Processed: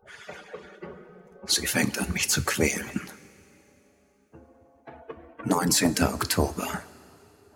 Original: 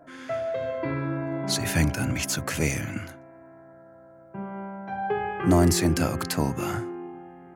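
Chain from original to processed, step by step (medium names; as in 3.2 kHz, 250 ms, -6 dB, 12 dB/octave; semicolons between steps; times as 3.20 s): harmonic-percussive separation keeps percussive; two-slope reverb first 0.24 s, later 3 s, from -18 dB, DRR 10.5 dB; trim +4 dB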